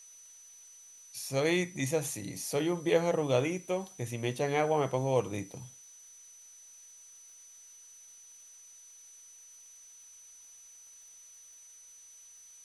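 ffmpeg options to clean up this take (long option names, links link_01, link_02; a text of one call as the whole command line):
ffmpeg -i in.wav -af "adeclick=threshold=4,bandreject=frequency=6000:width=30,afftdn=noise_reduction=23:noise_floor=-54" out.wav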